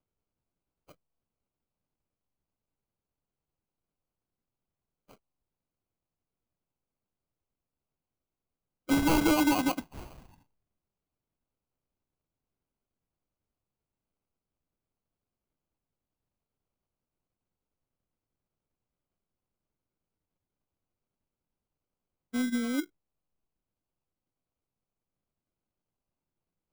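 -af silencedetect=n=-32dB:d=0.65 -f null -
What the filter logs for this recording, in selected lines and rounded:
silence_start: 0.00
silence_end: 8.89 | silence_duration: 8.89
silence_start: 9.80
silence_end: 22.34 | silence_duration: 12.55
silence_start: 22.81
silence_end: 26.72 | silence_duration: 3.92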